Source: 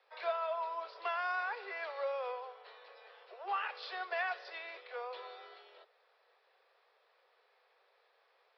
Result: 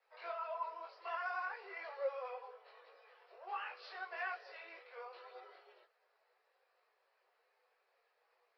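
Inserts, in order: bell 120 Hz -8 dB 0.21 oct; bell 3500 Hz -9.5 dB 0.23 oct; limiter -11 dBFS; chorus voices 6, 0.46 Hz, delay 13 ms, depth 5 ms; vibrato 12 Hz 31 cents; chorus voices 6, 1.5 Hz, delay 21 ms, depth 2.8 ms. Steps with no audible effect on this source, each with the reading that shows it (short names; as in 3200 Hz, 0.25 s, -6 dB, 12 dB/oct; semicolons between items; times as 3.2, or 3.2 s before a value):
bell 120 Hz: input band starts at 320 Hz; limiter -11 dBFS: input peak -25.0 dBFS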